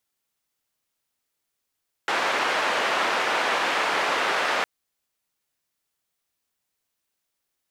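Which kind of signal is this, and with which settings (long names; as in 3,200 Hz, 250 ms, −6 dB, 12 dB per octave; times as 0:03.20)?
band-limited noise 470–1,800 Hz, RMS −24 dBFS 2.56 s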